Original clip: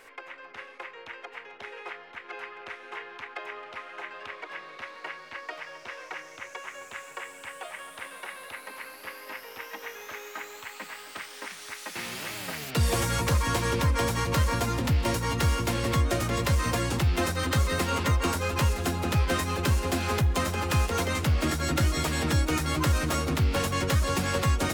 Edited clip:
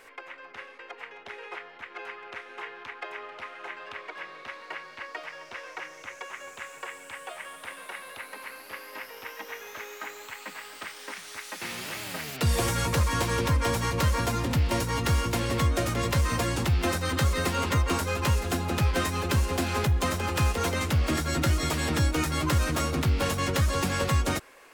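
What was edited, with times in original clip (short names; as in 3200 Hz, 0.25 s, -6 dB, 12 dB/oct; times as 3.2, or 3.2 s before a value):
0.79–1.13 cut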